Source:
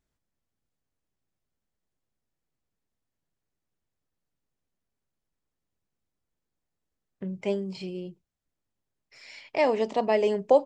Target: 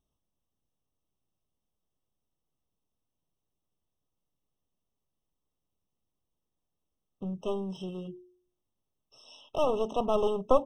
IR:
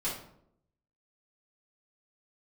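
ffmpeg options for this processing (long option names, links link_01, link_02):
-af "aeval=exprs='clip(val(0),-1,0.0251)':channel_layout=same,bandreject=frequency=120.1:width_type=h:width=4,bandreject=frequency=240.2:width_type=h:width=4,bandreject=frequency=360.3:width_type=h:width=4,afftfilt=real='re*eq(mod(floor(b*sr/1024/1300),2),0)':imag='im*eq(mod(floor(b*sr/1024/1300),2),0)':win_size=1024:overlap=0.75"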